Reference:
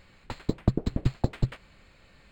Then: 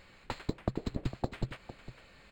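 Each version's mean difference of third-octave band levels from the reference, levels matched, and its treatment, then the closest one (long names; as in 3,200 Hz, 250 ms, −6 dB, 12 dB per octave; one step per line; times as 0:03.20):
6.5 dB: bass and treble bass −5 dB, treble −1 dB
downward compressor 3 to 1, threshold −31 dBFS, peak gain reduction 9.5 dB
single-tap delay 455 ms −13.5 dB
level +1 dB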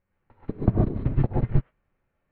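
10.5 dB: Bessel low-pass filter 1,500 Hz, order 4
reverb whose tail is shaped and stops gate 170 ms rising, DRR −5 dB
expander for the loud parts 2.5 to 1, over −34 dBFS
level +4 dB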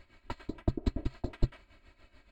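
3.5 dB: high-shelf EQ 4,900 Hz −7.5 dB
comb filter 3.1 ms, depth 93%
amplitude tremolo 6.9 Hz, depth 73%
level −3 dB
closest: third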